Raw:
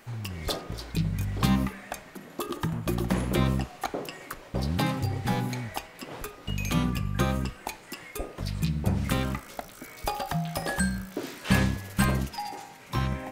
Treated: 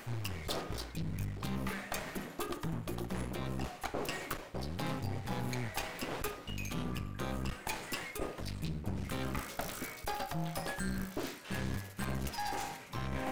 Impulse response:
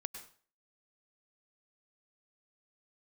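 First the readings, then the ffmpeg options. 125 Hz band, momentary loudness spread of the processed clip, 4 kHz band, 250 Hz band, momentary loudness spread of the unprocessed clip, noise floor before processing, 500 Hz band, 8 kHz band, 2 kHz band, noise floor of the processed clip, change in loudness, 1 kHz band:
−10.5 dB, 3 LU, −7.0 dB, −10.5 dB, 13 LU, −49 dBFS, −6.5 dB, −6.0 dB, −7.0 dB, −50 dBFS, −9.0 dB, −7.0 dB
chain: -af "areverse,acompressor=threshold=-39dB:ratio=12,areverse,aeval=exprs='clip(val(0),-1,0.00266)':channel_layout=same,volume=8dB"

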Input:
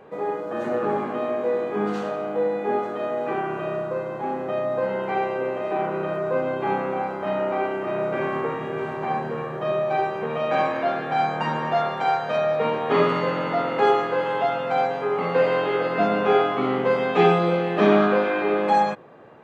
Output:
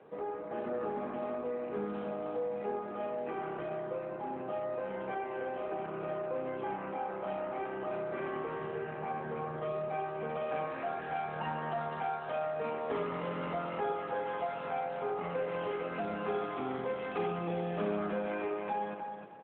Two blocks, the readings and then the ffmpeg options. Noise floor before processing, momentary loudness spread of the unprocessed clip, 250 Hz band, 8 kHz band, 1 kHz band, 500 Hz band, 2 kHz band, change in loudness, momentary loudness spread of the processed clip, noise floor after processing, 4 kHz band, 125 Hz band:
−31 dBFS, 8 LU, −13.0 dB, can't be measured, −13.0 dB, −13.0 dB, −14.0 dB, −13.0 dB, 3 LU, −41 dBFS, −16.5 dB, −12.0 dB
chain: -filter_complex "[0:a]asplit=2[link_01][link_02];[link_02]adelay=139.9,volume=-23dB,highshelf=frequency=4000:gain=-3.15[link_03];[link_01][link_03]amix=inputs=2:normalize=0,acompressor=threshold=-26dB:ratio=2.5,asplit=2[link_04][link_05];[link_05]aecho=0:1:307|614|921:0.447|0.112|0.0279[link_06];[link_04][link_06]amix=inputs=2:normalize=0,volume=-8.5dB" -ar 8000 -c:a libopencore_amrnb -b:a 12200

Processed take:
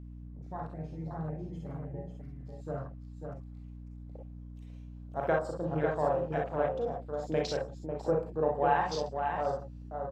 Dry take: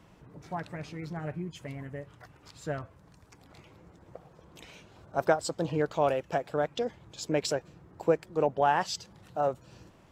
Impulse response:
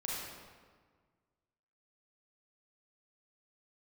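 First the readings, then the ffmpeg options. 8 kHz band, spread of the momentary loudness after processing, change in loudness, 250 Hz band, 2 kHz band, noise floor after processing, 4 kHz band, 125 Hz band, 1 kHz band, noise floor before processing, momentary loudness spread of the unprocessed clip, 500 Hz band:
below −10 dB, 18 LU, −2.0 dB, −2.0 dB, −2.5 dB, −46 dBFS, −7.0 dB, +1.0 dB, −1.5 dB, −58 dBFS, 16 LU, −1.5 dB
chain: -filter_complex "[0:a]bandreject=frequency=60:width_type=h:width=6,bandreject=frequency=120:width_type=h:width=6,bandreject=frequency=180:width_type=h:width=6,aecho=1:1:96|112|546:0.119|0.178|0.531[link_01];[1:a]atrim=start_sample=2205,atrim=end_sample=3087[link_02];[link_01][link_02]afir=irnorm=-1:irlink=0,afwtdn=0.01,aeval=exprs='val(0)+0.00794*(sin(2*PI*60*n/s)+sin(2*PI*2*60*n/s)/2+sin(2*PI*3*60*n/s)/3+sin(2*PI*4*60*n/s)/4+sin(2*PI*5*60*n/s)/5)':channel_layout=same,volume=-2dB"

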